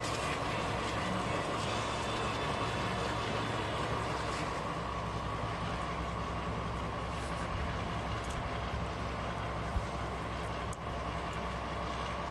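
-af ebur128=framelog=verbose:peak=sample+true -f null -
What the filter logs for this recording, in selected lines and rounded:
Integrated loudness:
  I:         -36.0 LUFS
  Threshold: -46.0 LUFS
Loudness range:
  LRA:         3.3 LU
  Threshold: -56.1 LUFS
  LRA low:   -37.6 LUFS
  LRA high:  -34.3 LUFS
Sample peak:
  Peak:      -21.7 dBFS
True peak:
  Peak:      -21.7 dBFS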